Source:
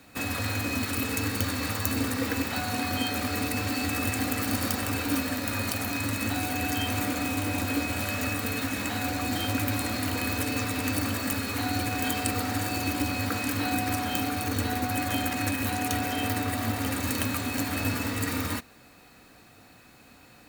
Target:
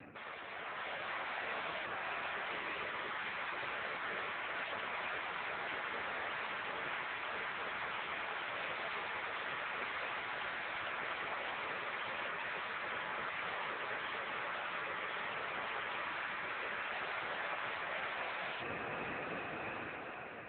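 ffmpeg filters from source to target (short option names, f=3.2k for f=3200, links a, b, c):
-af "alimiter=limit=-17dB:level=0:latency=1:release=176,areverse,acompressor=threshold=-43dB:ratio=6,areverse,bandreject=f=920:w=21,afftfilt=real='re*lt(hypot(re,im),0.00794)':imag='im*lt(hypot(re,im),0.00794)':win_size=1024:overlap=0.75,lowshelf=f=69:g=-4,dynaudnorm=f=120:g=13:m=7dB,lowpass=2.7k,afftdn=nr=30:nf=-69,lowshelf=f=220:g=-2.5,volume=13dB" -ar 8000 -c:a libopencore_amrnb -b:a 6700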